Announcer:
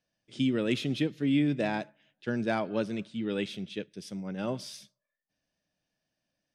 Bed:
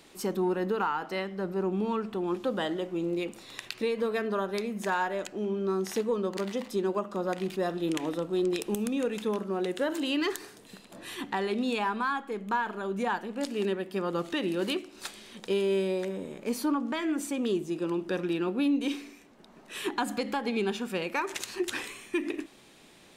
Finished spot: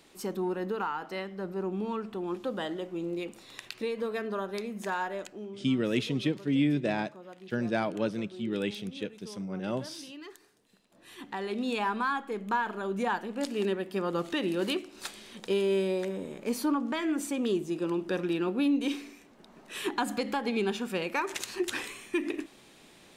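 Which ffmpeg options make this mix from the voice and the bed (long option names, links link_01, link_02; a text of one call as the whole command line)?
ffmpeg -i stem1.wav -i stem2.wav -filter_complex "[0:a]adelay=5250,volume=0dB[link_01];[1:a]volume=13.5dB,afade=type=out:start_time=5.15:duration=0.48:silence=0.211349,afade=type=in:start_time=10.92:duration=0.98:silence=0.141254[link_02];[link_01][link_02]amix=inputs=2:normalize=0" out.wav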